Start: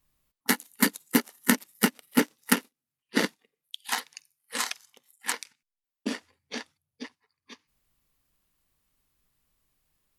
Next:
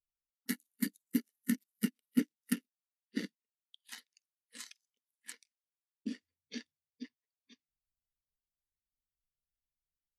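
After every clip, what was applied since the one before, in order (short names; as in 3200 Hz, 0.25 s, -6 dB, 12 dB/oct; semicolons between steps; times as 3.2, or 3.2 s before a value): bell 840 Hz -14.5 dB 1.6 oct; vocal rider within 5 dB 0.5 s; spectral expander 1.5:1; gain -8 dB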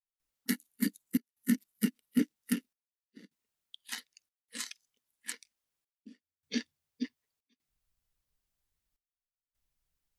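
low shelf 170 Hz +5.5 dB; limiter -25.5 dBFS, peak gain reduction 10.5 dB; step gate ".xxxxx.xxxxxxx.." 77 bpm -24 dB; gain +8.5 dB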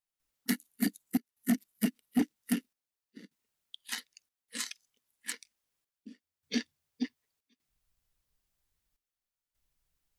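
soft clip -22 dBFS, distortion -15 dB; gain +3 dB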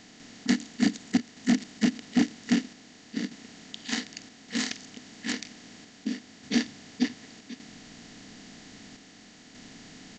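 per-bin compression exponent 0.4; downsampling 16000 Hz; bell 110 Hz +8 dB 0.4 oct; gain +2 dB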